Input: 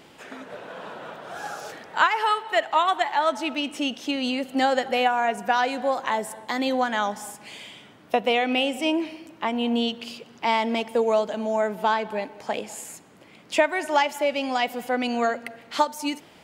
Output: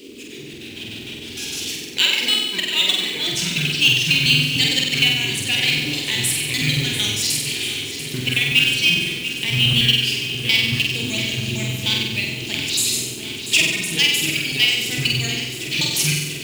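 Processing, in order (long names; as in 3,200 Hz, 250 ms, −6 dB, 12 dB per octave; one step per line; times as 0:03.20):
pitch shifter gated in a rhythm −10.5 semitones, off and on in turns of 76 ms
drawn EQ curve 140 Hz 0 dB, 520 Hz −23 dB, 1,300 Hz −26 dB, 2,500 Hz +11 dB
automatic gain control gain up to 7.5 dB
noise in a band 220–430 Hz −41 dBFS
floating-point word with a short mantissa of 2 bits
flutter between parallel walls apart 8.1 metres, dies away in 0.95 s
feedback echo at a low word length 690 ms, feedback 80%, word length 6 bits, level −11 dB
level −1 dB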